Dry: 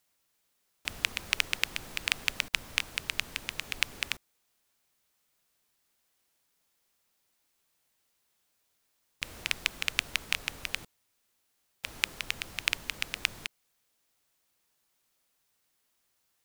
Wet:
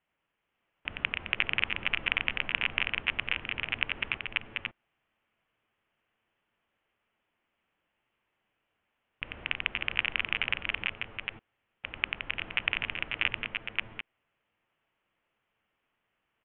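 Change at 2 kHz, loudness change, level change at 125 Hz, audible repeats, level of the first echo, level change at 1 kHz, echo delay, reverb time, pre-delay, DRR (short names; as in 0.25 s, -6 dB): +3.5 dB, +1.0 dB, +3.5 dB, 3, -5.0 dB, +3.5 dB, 90 ms, none, none, none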